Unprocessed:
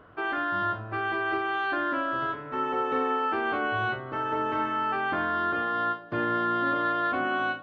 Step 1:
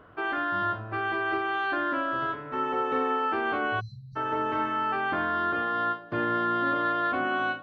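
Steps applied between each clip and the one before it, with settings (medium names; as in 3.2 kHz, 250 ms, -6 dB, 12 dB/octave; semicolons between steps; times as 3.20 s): spectral selection erased 3.80–4.16 s, 210–3800 Hz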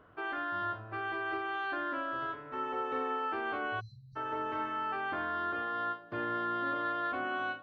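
dynamic bell 180 Hz, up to -6 dB, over -50 dBFS, Q 1.5; trim -7 dB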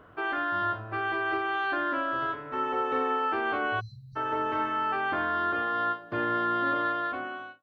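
fade out at the end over 0.84 s; trim +6.5 dB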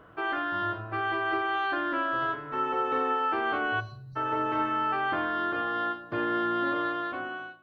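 reverberation RT60 0.75 s, pre-delay 6 ms, DRR 11.5 dB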